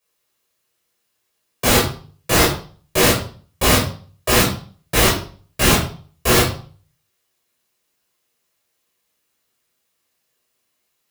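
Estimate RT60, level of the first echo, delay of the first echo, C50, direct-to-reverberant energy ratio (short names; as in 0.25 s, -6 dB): 0.45 s, none, none, 6.0 dB, -6.0 dB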